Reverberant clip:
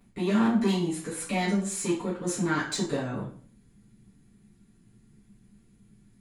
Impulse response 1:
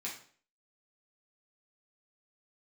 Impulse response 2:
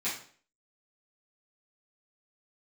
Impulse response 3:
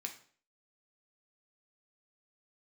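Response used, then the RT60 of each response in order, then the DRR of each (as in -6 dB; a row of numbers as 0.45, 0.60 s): 2; 0.50, 0.50, 0.50 s; -5.0, -11.5, 3.5 dB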